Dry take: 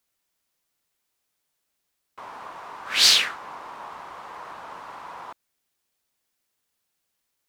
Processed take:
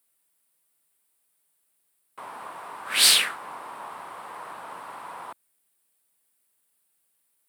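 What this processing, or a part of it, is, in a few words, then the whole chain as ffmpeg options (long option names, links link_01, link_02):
budget condenser microphone: -af "highpass=110,highshelf=frequency=7600:width_type=q:width=3:gain=6"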